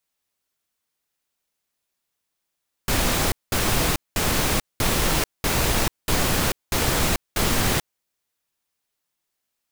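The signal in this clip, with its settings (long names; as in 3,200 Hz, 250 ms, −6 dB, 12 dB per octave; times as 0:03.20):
noise bursts pink, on 0.44 s, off 0.20 s, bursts 8, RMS −21 dBFS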